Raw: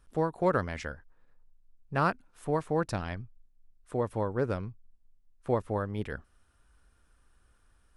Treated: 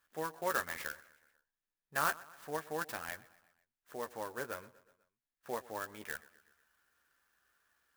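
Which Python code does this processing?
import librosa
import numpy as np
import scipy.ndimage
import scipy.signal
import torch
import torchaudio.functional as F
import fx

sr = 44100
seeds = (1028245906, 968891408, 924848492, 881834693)

y = fx.highpass(x, sr, hz=1200.0, slope=6)
y = fx.peak_eq(y, sr, hz=1700.0, db=7.5, octaves=0.41)
y = fx.doubler(y, sr, ms=13.0, db=-7.0)
y = fx.echo_feedback(y, sr, ms=123, feedback_pct=57, wet_db=-20.5)
y = fx.clock_jitter(y, sr, seeds[0], jitter_ms=0.045)
y = y * librosa.db_to_amplitude(-3.5)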